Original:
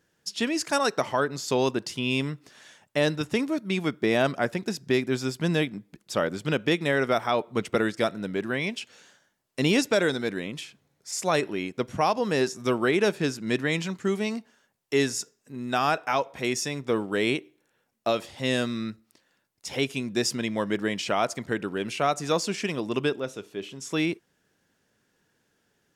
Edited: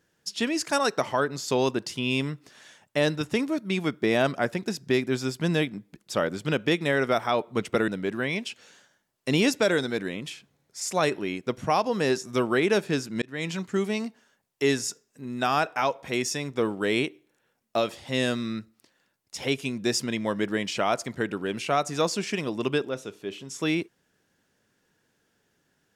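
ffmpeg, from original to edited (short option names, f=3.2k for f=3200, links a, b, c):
-filter_complex "[0:a]asplit=3[a][b][c];[a]atrim=end=7.882[d];[b]atrim=start=8.188:end=13.53,asetpts=PTS-STARTPTS,afade=t=out:st=5.338:d=0.004:c=hsin[e];[c]atrim=start=13.53,asetpts=PTS-STARTPTS,afade=t=in:d=0.34[f];[e][f]concat=n=2:v=0:a=1[g];[d][g]acrossfade=d=0.004:c1=hsin:c2=hsin"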